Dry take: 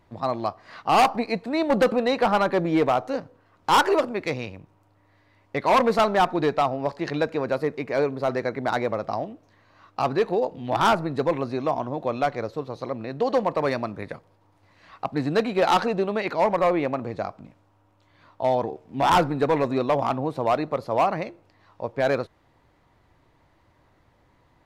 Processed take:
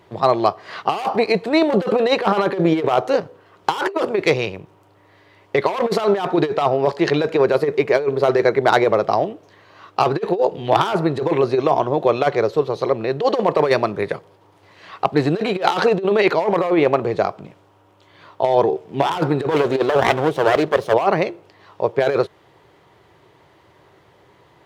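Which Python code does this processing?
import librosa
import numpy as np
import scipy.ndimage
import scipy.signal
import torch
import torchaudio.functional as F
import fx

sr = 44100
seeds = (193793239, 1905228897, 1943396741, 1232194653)

y = fx.lower_of_two(x, sr, delay_ms=0.31, at=(19.51, 20.94))
y = fx.graphic_eq_31(y, sr, hz=(250, 400, 3150), db=(-11, 9, 5))
y = fx.over_compress(y, sr, threshold_db=-22.0, ratio=-0.5)
y = scipy.signal.sosfilt(scipy.signal.butter(2, 120.0, 'highpass', fs=sr, output='sos'), y)
y = y * 10.0 ** (7.0 / 20.0)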